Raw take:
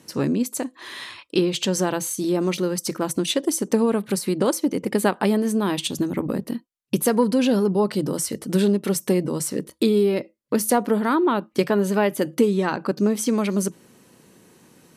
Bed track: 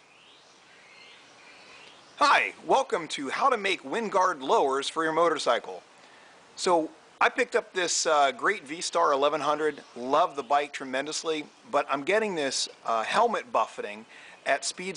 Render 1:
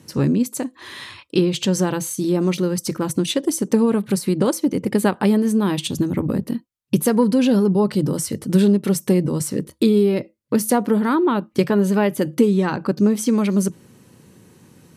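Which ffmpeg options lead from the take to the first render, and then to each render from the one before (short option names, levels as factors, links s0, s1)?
-af "equalizer=f=93:t=o:w=1.9:g=12,bandreject=f=670:w=16"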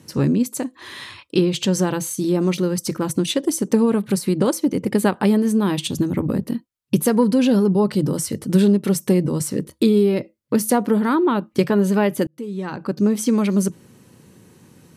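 -filter_complex "[0:a]asplit=2[s0][s1];[s0]atrim=end=12.27,asetpts=PTS-STARTPTS,afade=t=out:st=12.266:d=0.004:c=hsin[s2];[s1]atrim=start=12.27,asetpts=PTS-STARTPTS,afade=t=in:d=0.92[s3];[s2][s3]concat=n=2:v=0:a=1"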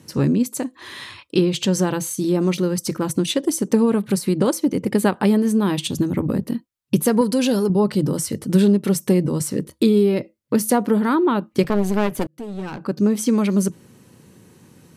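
-filter_complex "[0:a]asettb=1/sr,asplit=3[s0][s1][s2];[s0]atrim=end=7.214[s3];[s1]atrim=start=7.21:end=7.7,asetpts=PTS-STARTPTS,afade=t=in:d=0.004:c=qsin,afade=t=out:st=0.486:d=0.004:c=qsin,bass=f=250:g=-7,treble=f=4000:g=8[s4];[s2]atrim=start=7.696[s5];[s3][s4]acrossfade=d=0.004:c1=hsin:c2=qsin[s6];[s6][s5]acrossfade=d=0.004:c1=qsin:c2=hsin,asettb=1/sr,asplit=3[s7][s8][s9];[s7]atrim=end=11.634[s10];[s8]atrim=start=11.63:end=12.84,asetpts=PTS-STARTPTS,afade=t=in:d=0.004:c=qsin,afade=t=out:st=1.206:d=0.004:c=qsin,aeval=exprs='clip(val(0),-1,0.0282)':c=same[s11];[s9]atrim=start=12.836[s12];[s10][s11]acrossfade=d=0.004:c1=hsin:c2=qsin[s13];[s13][s12]acrossfade=d=0.004:c1=qsin:c2=hsin"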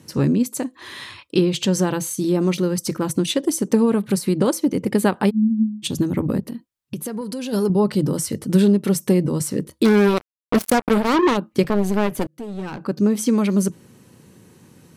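-filter_complex "[0:a]asplit=3[s0][s1][s2];[s0]afade=t=out:st=5.29:d=0.02[s3];[s1]asuperpass=centerf=230:order=20:qfactor=5.5,afade=t=in:st=5.29:d=0.02,afade=t=out:st=5.82:d=0.02[s4];[s2]afade=t=in:st=5.82:d=0.02[s5];[s3][s4][s5]amix=inputs=3:normalize=0,asplit=3[s6][s7][s8];[s6]afade=t=out:st=6.39:d=0.02[s9];[s7]acompressor=threshold=0.0398:ratio=3:attack=3.2:release=140:knee=1:detection=peak,afade=t=in:st=6.39:d=0.02,afade=t=out:st=7.52:d=0.02[s10];[s8]afade=t=in:st=7.52:d=0.02[s11];[s9][s10][s11]amix=inputs=3:normalize=0,asplit=3[s12][s13][s14];[s12]afade=t=out:st=9.84:d=0.02[s15];[s13]acrusher=bits=2:mix=0:aa=0.5,afade=t=in:st=9.84:d=0.02,afade=t=out:st=11.36:d=0.02[s16];[s14]afade=t=in:st=11.36:d=0.02[s17];[s15][s16][s17]amix=inputs=3:normalize=0"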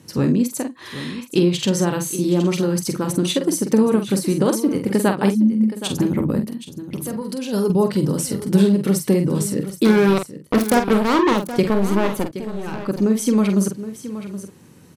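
-filter_complex "[0:a]asplit=2[s0][s1];[s1]adelay=46,volume=0.447[s2];[s0][s2]amix=inputs=2:normalize=0,aecho=1:1:771:0.224"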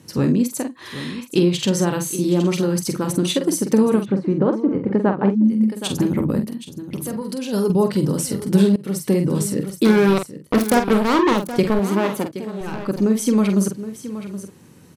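-filter_complex "[0:a]asplit=3[s0][s1][s2];[s0]afade=t=out:st=4.04:d=0.02[s3];[s1]lowpass=1400,afade=t=in:st=4.04:d=0.02,afade=t=out:st=5.43:d=0.02[s4];[s2]afade=t=in:st=5.43:d=0.02[s5];[s3][s4][s5]amix=inputs=3:normalize=0,asettb=1/sr,asplit=3[s6][s7][s8];[s6]atrim=end=11.794[s9];[s7]atrim=start=11.79:end=12.61,asetpts=PTS-STARTPTS,afade=t=in:d=0.004:c=qsin,afade=t=out:st=0.816:d=0.004:c=qsin,highpass=130[s10];[s8]atrim=start=12.606[s11];[s9][s10]acrossfade=d=0.004:c1=hsin:c2=qsin[s12];[s12][s11]acrossfade=d=0.004:c1=qsin:c2=hsin,asplit=2[s13][s14];[s13]atrim=end=8.76,asetpts=PTS-STARTPTS,afade=t=out:st=8.756:d=0.004:c=hsin:silence=0.11885[s15];[s14]atrim=start=8.76,asetpts=PTS-STARTPTS,afade=t=in:d=0.56:c=qsin:silence=0.11885[s16];[s15][s16]concat=n=2:v=0:a=1"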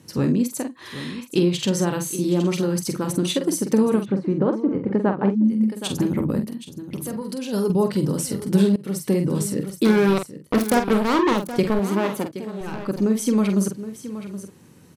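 -af "volume=0.75"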